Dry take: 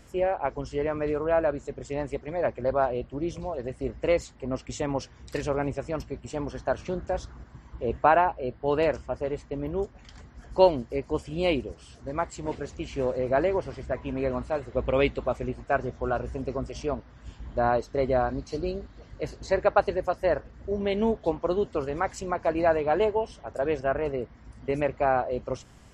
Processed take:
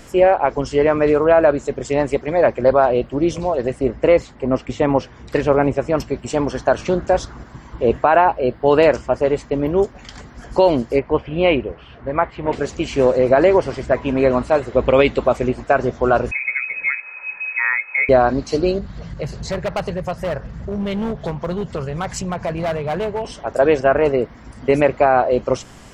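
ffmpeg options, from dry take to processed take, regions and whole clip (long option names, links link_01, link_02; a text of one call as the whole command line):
ffmpeg -i in.wav -filter_complex "[0:a]asettb=1/sr,asplit=3[link_01][link_02][link_03];[link_01]atrim=end=3.794[link_04];[link_02]atrim=start=3.79:end=5.97,asetpts=PTS-STARTPTS,afade=type=in:duration=0.004:curve=qsin,afade=type=out:start_time=2.176:duration=0.004:curve=qsin,acrossover=split=3900[link_05][link_06];[link_06]acompressor=threshold=-51dB:ratio=4:attack=1:release=60[link_07];[link_05][link_07]amix=inputs=2:normalize=0,highshelf=frequency=3300:gain=-9[link_08];[link_03]atrim=start=5.966[link_09];[link_04][link_08]acrossfade=duration=0.004:curve1=hsin:curve2=qsin[link_10];[link_10][link_09]acrossfade=duration=0.004:curve1=qsin:curve2=hsin,asettb=1/sr,asplit=3[link_11][link_12][link_13];[link_11]atrim=end=10.994[link_14];[link_12]atrim=start=10.99:end=12.53,asetpts=PTS-STARTPTS,afade=type=in:duration=0.004:curve=qsin,afade=type=out:start_time=1.536:duration=0.004:curve=qsin,lowpass=frequency=2800:width=0.5412,lowpass=frequency=2800:width=1.3066,equalizer=frequency=270:width_type=o:width=1.4:gain=-4.5[link_15];[link_13]atrim=start=12.526[link_16];[link_14][link_15]acrossfade=duration=0.004:curve1=hsin:curve2=qsin[link_17];[link_17][link_16]acrossfade=duration=0.004:curve1=qsin:curve2=hsin,asettb=1/sr,asplit=3[link_18][link_19][link_20];[link_18]atrim=end=16.314[link_21];[link_19]atrim=start=16.31:end=18.09,asetpts=PTS-STARTPTS,afade=type=in:duration=0.004:curve=qsin,afade=type=out:start_time=1.776:duration=0.004:curve=qsin,acompressor=threshold=-44dB:ratio=1.5:attack=3.2:release=140:knee=1:detection=peak,aecho=1:1:2.4:0.51,atrim=end_sample=78498,lowpass=frequency=2200:width_type=q:width=0.5098,lowpass=frequency=2200:width_type=q:width=0.6013,lowpass=frequency=2200:width_type=q:width=0.9,lowpass=frequency=2200:width_type=q:width=2.563,afreqshift=-2600[link_22];[link_20]atrim=start=18.086[link_23];[link_21][link_22]acrossfade=duration=0.004:curve1=hsin:curve2=qsin[link_24];[link_24][link_23]acrossfade=duration=0.004:curve1=qsin:curve2=hsin,asettb=1/sr,asplit=3[link_25][link_26][link_27];[link_25]atrim=end=18.784[link_28];[link_26]atrim=start=18.78:end=23.25,asetpts=PTS-STARTPTS,afade=type=in:duration=0.004:curve=qsin,afade=type=out:start_time=4.466:duration=0.004:curve=qsin,lowshelf=frequency=220:width_type=q:width=3:gain=7.5,volume=21dB,asoftclip=hard,volume=-21dB,acompressor=threshold=-34dB:ratio=4:attack=3.2:release=140:knee=1:detection=peak[link_29];[link_27]atrim=start=23.246[link_30];[link_28][link_29]acrossfade=duration=0.004:curve1=hsin:curve2=qsin[link_31];[link_31][link_30]acrossfade=duration=0.004:curve1=qsin:curve2=hsin,equalizer=frequency=69:width=0.74:gain=-7.5,alimiter=level_in=15.5dB:limit=-1dB:release=50:level=0:latency=1,volume=-2dB" out.wav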